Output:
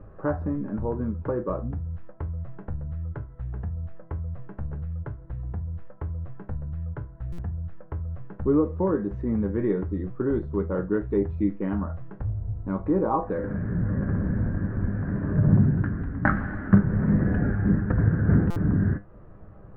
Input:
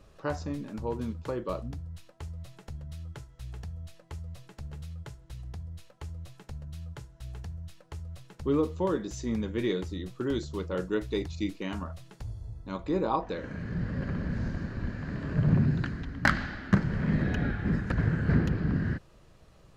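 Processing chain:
Chebyshev low-pass filter 1,600 Hz, order 3
tilt shelving filter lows +4 dB, about 1,100 Hz
in parallel at +2 dB: downward compressor, threshold −36 dBFS, peak gain reduction 21.5 dB
on the sum: tuned comb filter 100 Hz, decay 0.23 s, harmonics all, mix 70%
buffer that repeats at 0:07.32/0:18.50, samples 256, times 10
level +6 dB

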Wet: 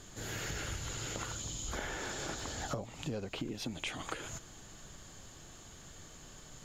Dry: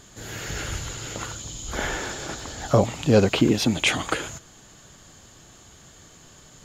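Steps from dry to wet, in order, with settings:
downward compressor 20 to 1, threshold −31 dBFS, peak gain reduction 20.5 dB
background noise brown −53 dBFS
level −4 dB

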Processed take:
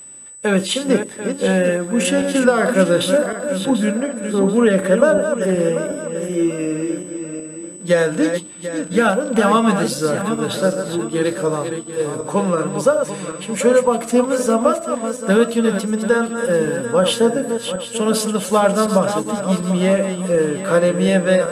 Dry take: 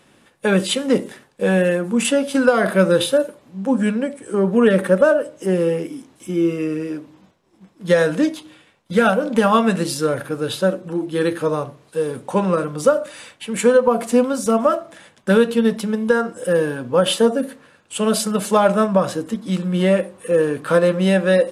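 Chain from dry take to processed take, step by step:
feedback delay that plays each chunk backwards 370 ms, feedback 58%, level −7.5 dB
steady tone 8,000 Hz −36 dBFS

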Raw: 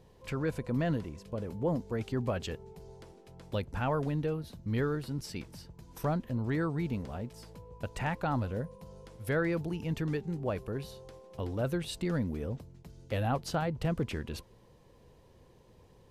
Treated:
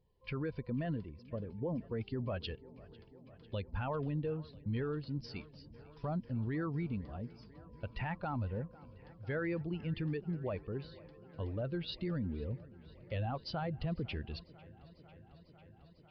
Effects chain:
spectral dynamics exaggerated over time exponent 1.5
brickwall limiter −30.5 dBFS, peak gain reduction 8.5 dB
delay with a low-pass on its return 498 ms, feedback 81%, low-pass 3,900 Hz, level −21.5 dB
downsampling to 11,025 Hz
level +1.5 dB

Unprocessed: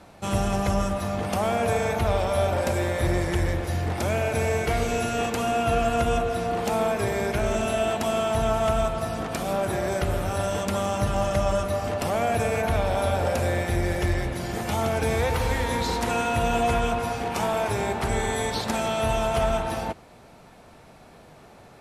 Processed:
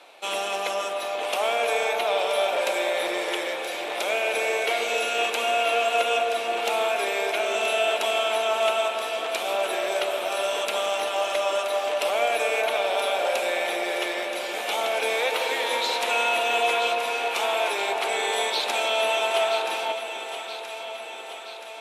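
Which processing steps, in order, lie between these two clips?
high-pass filter 410 Hz 24 dB per octave
flat-topped bell 3,000 Hz +8.5 dB 1 octave
on a send: delay that swaps between a low-pass and a high-pass 488 ms, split 1,000 Hz, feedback 78%, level −7.5 dB

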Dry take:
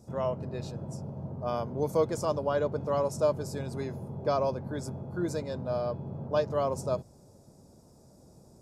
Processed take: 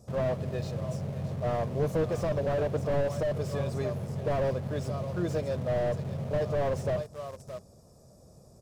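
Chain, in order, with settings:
comb filter 1.7 ms, depth 46%
single-tap delay 620 ms −16.5 dB
in parallel at −9 dB: bit reduction 7 bits
on the sum: slew-rate limiting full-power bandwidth 27 Hz

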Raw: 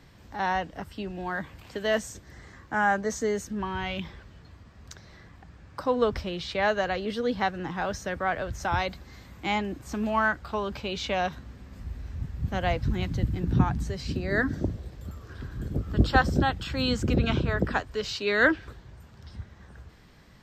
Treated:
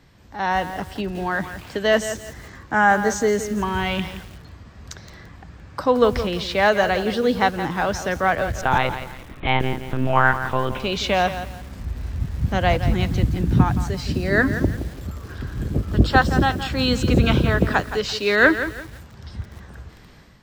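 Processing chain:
automatic gain control gain up to 8 dB
0:08.61–0:10.80: one-pitch LPC vocoder at 8 kHz 130 Hz
feedback echo at a low word length 170 ms, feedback 35%, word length 6 bits, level −10.5 dB

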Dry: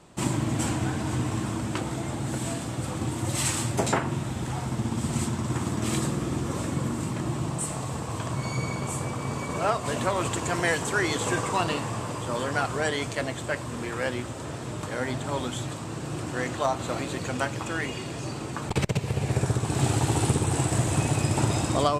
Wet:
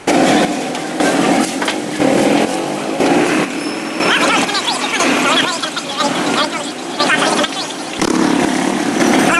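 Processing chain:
dynamic equaliser 1,400 Hz, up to +4 dB, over −46 dBFS, Q 7.9
wrong playback speed 33 rpm record played at 78 rpm
in parallel at −8 dB: hard clipping −23.5 dBFS, distortion −11 dB
on the sum: square-wave tremolo 1 Hz, depth 65%, duty 45%
delay with a high-pass on its return 261 ms, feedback 73%, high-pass 3,900 Hz, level −10 dB
boost into a limiter +17 dB
level −1.5 dB
AAC 96 kbit/s 24,000 Hz

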